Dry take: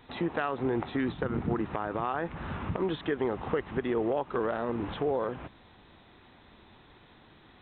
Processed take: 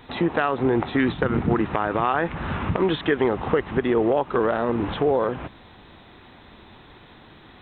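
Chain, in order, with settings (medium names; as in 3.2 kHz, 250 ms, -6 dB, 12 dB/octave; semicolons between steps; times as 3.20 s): 0.88–3.29 s: dynamic bell 2.4 kHz, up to +4 dB, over -44 dBFS, Q 0.82; trim +8.5 dB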